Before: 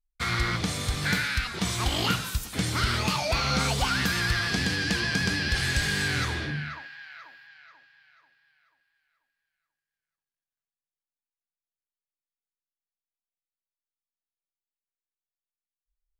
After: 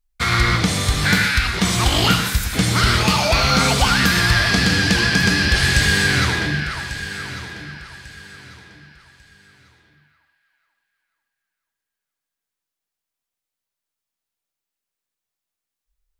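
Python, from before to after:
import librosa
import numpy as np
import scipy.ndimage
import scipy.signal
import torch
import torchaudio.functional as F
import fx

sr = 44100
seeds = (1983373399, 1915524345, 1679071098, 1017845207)

p1 = x + fx.echo_feedback(x, sr, ms=1145, feedback_pct=29, wet_db=-13.5, dry=0)
p2 = fx.rev_gated(p1, sr, seeds[0], gate_ms=140, shape='rising', drr_db=7.5)
y = p2 * librosa.db_to_amplitude(9.0)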